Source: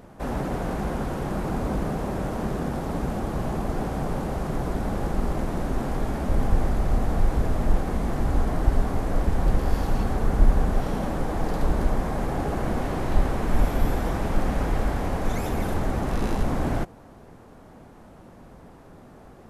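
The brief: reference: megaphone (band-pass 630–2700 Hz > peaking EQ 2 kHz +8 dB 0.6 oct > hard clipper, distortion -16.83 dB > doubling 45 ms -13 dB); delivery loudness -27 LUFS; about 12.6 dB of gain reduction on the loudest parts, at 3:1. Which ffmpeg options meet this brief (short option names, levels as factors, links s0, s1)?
-filter_complex "[0:a]acompressor=threshold=0.0355:ratio=3,highpass=630,lowpass=2700,equalizer=f=2000:t=o:w=0.6:g=8,asoftclip=type=hard:threshold=0.0178,asplit=2[s0][s1];[s1]adelay=45,volume=0.224[s2];[s0][s2]amix=inputs=2:normalize=0,volume=5.01"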